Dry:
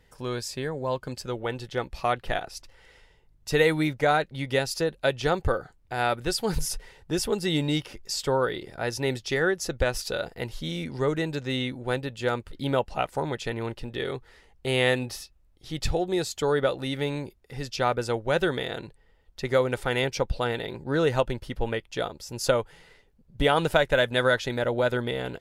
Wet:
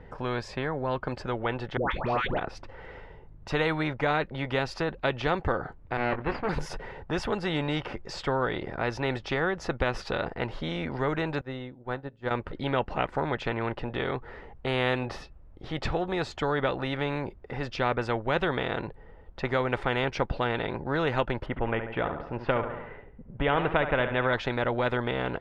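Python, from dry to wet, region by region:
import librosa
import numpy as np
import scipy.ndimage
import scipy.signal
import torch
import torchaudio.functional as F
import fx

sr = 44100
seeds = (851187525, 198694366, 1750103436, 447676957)

y = fx.chain(x, sr, fx.lowpass(hz=6900.0, slope=12),
    fx.dispersion(late='highs', ms=145.0, hz=1000.0),
    fx.env_flatten(amount_pct=50), at=(1.77, 2.38))
y = fx.chain(y, sr, fx.lower_of_two(delay_ms=0.44),
    fx.lowpass(hz=2200.0, slope=12),
    fx.doubler(ms=20.0, db=-9.5), at=(5.97, 6.49))
y = fx.chain(y, sr, fx.dynamic_eq(hz=2400.0, q=1.8, threshold_db=-48.0, ratio=4.0, max_db=-7),
    fx.comb_fb(f0_hz=68.0, decay_s=0.32, harmonics='all', damping=0.0, mix_pct=40),
    fx.upward_expand(threshold_db=-42.0, expansion=2.5), at=(11.41, 12.31))
y = fx.chain(y, sr, fx.lowpass(hz=2800.0, slope=24),
    fx.echo_feedback(ms=70, feedback_pct=44, wet_db=-13.5), at=(21.46, 24.33))
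y = scipy.signal.sosfilt(scipy.signal.butter(2, 1300.0, 'lowpass', fs=sr, output='sos'), y)
y = fx.spectral_comp(y, sr, ratio=2.0)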